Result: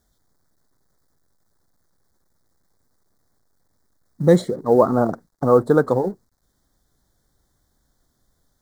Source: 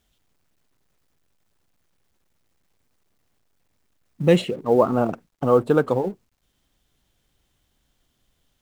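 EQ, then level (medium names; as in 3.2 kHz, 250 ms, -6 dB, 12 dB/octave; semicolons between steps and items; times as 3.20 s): Butterworth band-stop 2.7 kHz, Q 1.2; +2.5 dB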